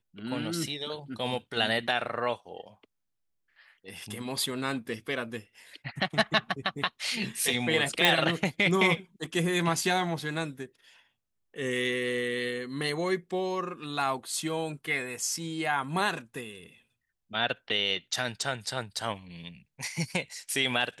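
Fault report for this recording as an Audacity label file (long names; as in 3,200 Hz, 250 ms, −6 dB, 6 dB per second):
8.050000	8.050000	click −7 dBFS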